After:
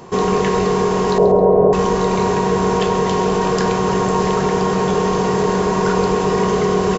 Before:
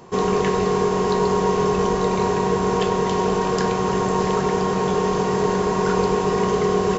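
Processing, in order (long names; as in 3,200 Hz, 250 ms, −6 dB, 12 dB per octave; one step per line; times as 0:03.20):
in parallel at 0 dB: brickwall limiter −18 dBFS, peak gain reduction 11 dB
0:01.18–0:01.73: on the sum: low-pass with resonance 610 Hz, resonance Q 4.9
repeating echo 134 ms, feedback 27%, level −14.5 dB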